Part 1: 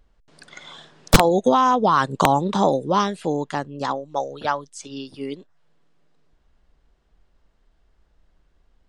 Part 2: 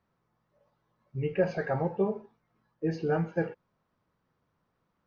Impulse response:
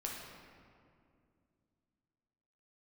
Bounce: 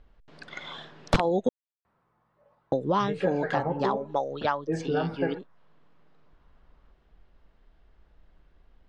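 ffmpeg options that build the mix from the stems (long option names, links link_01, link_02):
-filter_complex "[0:a]volume=2.5dB,asplit=3[link_01][link_02][link_03];[link_01]atrim=end=1.49,asetpts=PTS-STARTPTS,afade=type=out:start_time=1.486:duration=0.004:curve=hsin[link_04];[link_02]atrim=start=1.49:end=2.72,asetpts=PTS-STARTPTS,volume=0[link_05];[link_03]atrim=start=2.72,asetpts=PTS-STARTPTS,afade=type=in:duration=0.004:curve=hsin[link_06];[link_04][link_05][link_06]concat=n=3:v=0:a=1[link_07];[1:a]equalizer=frequency=1000:width_type=o:width=1.9:gain=6.5,adelay=1850,volume=2dB[link_08];[link_07][link_08]amix=inputs=2:normalize=0,lowpass=3600,acompressor=threshold=-25dB:ratio=2.5"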